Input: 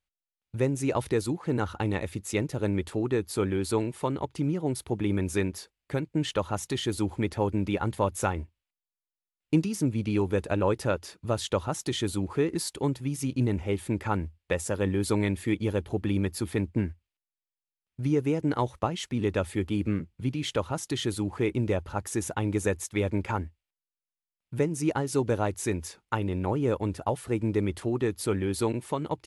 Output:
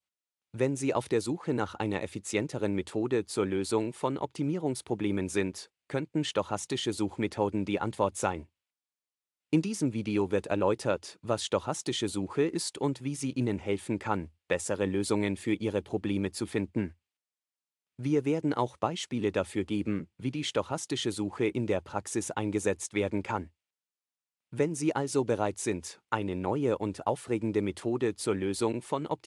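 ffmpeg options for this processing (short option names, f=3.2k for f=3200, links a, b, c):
-af "highpass=90,lowshelf=f=120:g=-10.5,aresample=22050,aresample=44100,adynamicequalizer=threshold=0.00447:dfrequency=1600:dqfactor=1.5:tfrequency=1600:tqfactor=1.5:attack=5:release=100:ratio=0.375:range=2:mode=cutabove:tftype=bell"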